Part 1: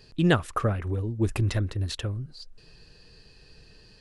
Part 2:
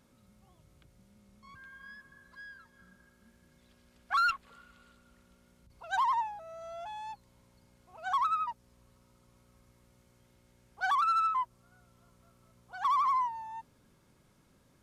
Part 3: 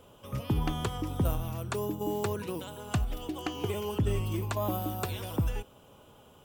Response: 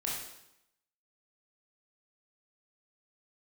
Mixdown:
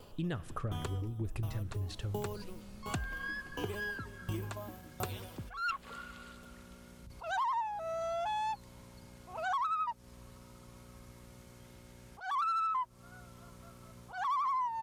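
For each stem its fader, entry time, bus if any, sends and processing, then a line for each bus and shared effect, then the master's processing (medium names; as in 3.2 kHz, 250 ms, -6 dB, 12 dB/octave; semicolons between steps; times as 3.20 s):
-12.0 dB, 0.00 s, send -20.5 dB, bass shelf 110 Hz +11.5 dB
+2.5 dB, 1.40 s, no send, level rider gain up to 8 dB; peak limiter -18.5 dBFS, peak gain reduction 4 dB; attacks held to a fixed rise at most 140 dB/s
+2.0 dB, 0.00 s, no send, sawtooth tremolo in dB decaying 1.4 Hz, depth 33 dB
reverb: on, RT60 0.85 s, pre-delay 17 ms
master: compression 5:1, threshold -33 dBFS, peak gain reduction 13 dB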